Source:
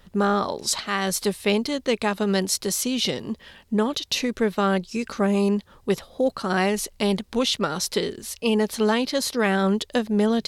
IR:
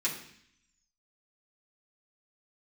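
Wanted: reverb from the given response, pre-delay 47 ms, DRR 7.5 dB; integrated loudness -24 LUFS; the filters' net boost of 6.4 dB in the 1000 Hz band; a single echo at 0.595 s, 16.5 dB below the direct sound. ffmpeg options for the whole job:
-filter_complex "[0:a]equalizer=f=1k:t=o:g=8.5,aecho=1:1:595:0.15,asplit=2[a][b];[1:a]atrim=start_sample=2205,adelay=47[c];[b][c]afir=irnorm=-1:irlink=0,volume=-13.5dB[d];[a][d]amix=inputs=2:normalize=0,volume=-2.5dB"

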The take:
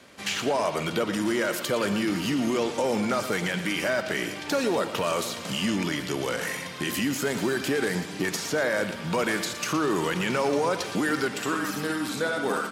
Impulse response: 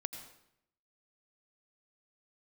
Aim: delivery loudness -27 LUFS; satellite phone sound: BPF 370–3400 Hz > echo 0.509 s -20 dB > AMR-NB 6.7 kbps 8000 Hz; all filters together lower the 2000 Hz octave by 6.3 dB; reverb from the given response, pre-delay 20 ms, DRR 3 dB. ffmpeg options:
-filter_complex "[0:a]equalizer=f=2k:t=o:g=-8,asplit=2[a][b];[1:a]atrim=start_sample=2205,adelay=20[c];[b][c]afir=irnorm=-1:irlink=0,volume=-2.5dB[d];[a][d]amix=inputs=2:normalize=0,highpass=370,lowpass=3.4k,aecho=1:1:509:0.1,volume=4dB" -ar 8000 -c:a libopencore_amrnb -b:a 6700

